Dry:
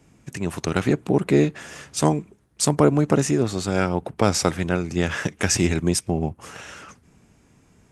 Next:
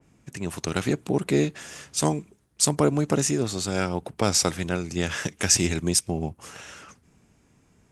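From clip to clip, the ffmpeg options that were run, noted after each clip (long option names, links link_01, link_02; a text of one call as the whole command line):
ffmpeg -i in.wav -af "adynamicequalizer=threshold=0.00891:dfrequency=2900:dqfactor=0.7:tfrequency=2900:tqfactor=0.7:attack=5:release=100:ratio=0.375:range=4:mode=boostabove:tftype=highshelf,volume=-4.5dB" out.wav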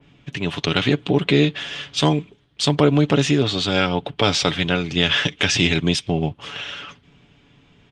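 ffmpeg -i in.wav -filter_complex "[0:a]aecho=1:1:7:0.42,asplit=2[link_01][link_02];[link_02]alimiter=limit=-13.5dB:level=0:latency=1,volume=2.5dB[link_03];[link_01][link_03]amix=inputs=2:normalize=0,lowpass=frequency=3300:width_type=q:width=4.8,volume=-1.5dB" out.wav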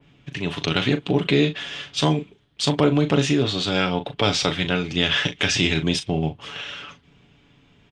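ffmpeg -i in.wav -filter_complex "[0:a]asplit=2[link_01][link_02];[link_02]adelay=38,volume=-10dB[link_03];[link_01][link_03]amix=inputs=2:normalize=0,volume=-2.5dB" out.wav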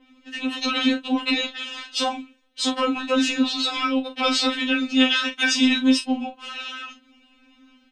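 ffmpeg -i in.wav -af "afftfilt=real='re*3.46*eq(mod(b,12),0)':imag='im*3.46*eq(mod(b,12),0)':win_size=2048:overlap=0.75,volume=3.5dB" out.wav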